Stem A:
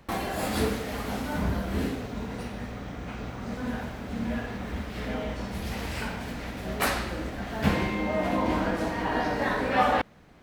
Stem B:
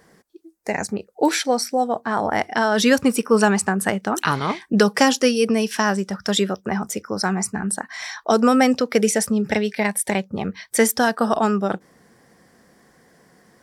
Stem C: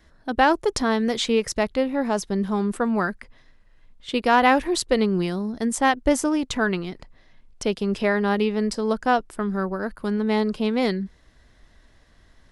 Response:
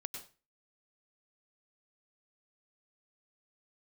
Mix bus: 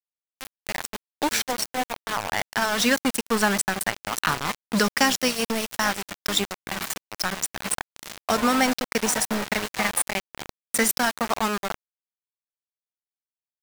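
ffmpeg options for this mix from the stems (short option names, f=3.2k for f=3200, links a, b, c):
-filter_complex "[0:a]highpass=f=420:w=0.5412,highpass=f=420:w=1.3066,flanger=delay=5.7:depth=1.3:regen=-18:speed=0.9:shape=triangular,volume=2.5dB[a];[1:a]volume=0dB[b];[2:a]volume=-12dB[c];[a][b][c]amix=inputs=3:normalize=0,highpass=f=96:p=1,equalizer=f=440:t=o:w=1.8:g=-9,aeval=exprs='val(0)*gte(abs(val(0)),0.0794)':c=same"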